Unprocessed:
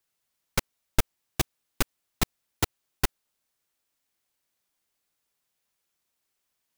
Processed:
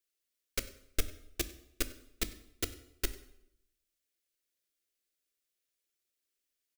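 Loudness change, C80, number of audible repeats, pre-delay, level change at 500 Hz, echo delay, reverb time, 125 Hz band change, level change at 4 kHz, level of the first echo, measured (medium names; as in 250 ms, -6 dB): -7.5 dB, 16.5 dB, 1, 5 ms, -7.0 dB, 97 ms, 0.75 s, -12.5 dB, -6.5 dB, -21.5 dB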